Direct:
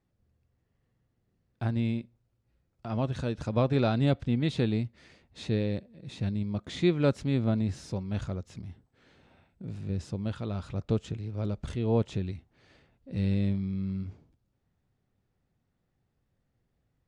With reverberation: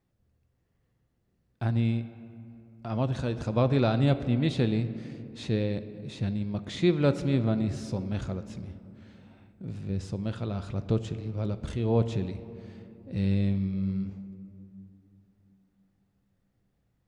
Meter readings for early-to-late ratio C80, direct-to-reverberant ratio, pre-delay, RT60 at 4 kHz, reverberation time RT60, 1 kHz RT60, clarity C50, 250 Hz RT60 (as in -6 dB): 13.5 dB, 11.0 dB, 6 ms, 1.4 s, 2.8 s, 2.6 s, 12.5 dB, 4.1 s